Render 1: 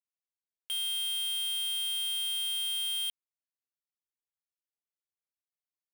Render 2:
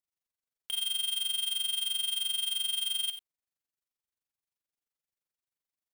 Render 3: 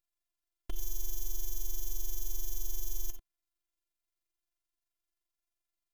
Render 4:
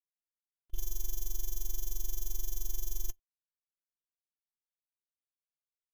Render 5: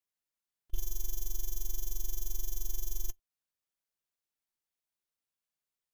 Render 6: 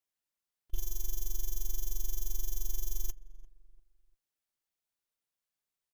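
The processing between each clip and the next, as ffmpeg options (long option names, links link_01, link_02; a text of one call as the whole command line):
ffmpeg -i in.wav -filter_complex "[0:a]lowshelf=frequency=230:gain=3.5,tremolo=f=23:d=0.919,asplit=2[link_01][link_02];[link_02]aecho=0:1:59|65|91:0.133|0.158|0.211[link_03];[link_01][link_03]amix=inputs=2:normalize=0,volume=4dB" out.wav
ffmpeg -i in.wav -af "equalizer=frequency=140:width_type=o:width=0.78:gain=13,aeval=exprs='abs(val(0))':channel_layout=same,afftfilt=real='hypot(re,im)*cos(PI*b)':imag='0':win_size=512:overlap=0.75,volume=5dB" out.wav
ffmpeg -i in.wav -af "agate=range=-36dB:threshold=-27dB:ratio=16:detection=peak,volume=4dB" out.wav
ffmpeg -i in.wav -af "alimiter=limit=-21.5dB:level=0:latency=1:release=338,volume=3.5dB" out.wav
ffmpeg -i in.wav -filter_complex "[0:a]asplit=2[link_01][link_02];[link_02]adelay=346,lowpass=frequency=1100:poles=1,volume=-17.5dB,asplit=2[link_03][link_04];[link_04]adelay=346,lowpass=frequency=1100:poles=1,volume=0.36,asplit=2[link_05][link_06];[link_06]adelay=346,lowpass=frequency=1100:poles=1,volume=0.36[link_07];[link_01][link_03][link_05][link_07]amix=inputs=4:normalize=0" out.wav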